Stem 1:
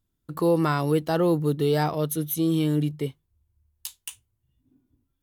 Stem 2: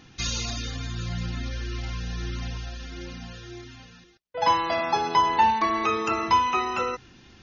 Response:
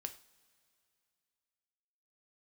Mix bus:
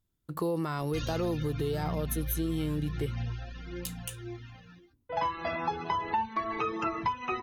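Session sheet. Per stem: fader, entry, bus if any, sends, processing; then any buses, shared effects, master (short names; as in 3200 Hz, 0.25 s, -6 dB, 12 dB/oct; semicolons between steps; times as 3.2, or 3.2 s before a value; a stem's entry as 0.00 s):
-2.5 dB, 0.00 s, no send, limiter -16.5 dBFS, peak gain reduction 5.5 dB
+1.0 dB, 0.75 s, no send, reverb removal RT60 0.58 s; tone controls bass +5 dB, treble -14 dB; flange 0.33 Hz, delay 5.6 ms, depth 8.4 ms, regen +31%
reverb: off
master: bell 260 Hz -4.5 dB 0.23 oct; compressor 6:1, threshold -27 dBFS, peak gain reduction 10.5 dB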